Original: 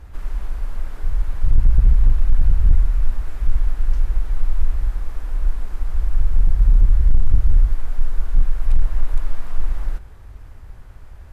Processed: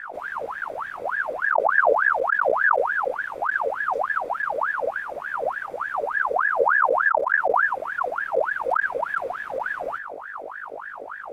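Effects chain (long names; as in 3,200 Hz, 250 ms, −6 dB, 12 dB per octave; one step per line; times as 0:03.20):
low-shelf EQ 440 Hz +7 dB
notch comb filter 1,200 Hz
mains hum 50 Hz, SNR 12 dB
ring modulator whose carrier an LFO sweeps 1,100 Hz, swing 55%, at 3.4 Hz
level −1.5 dB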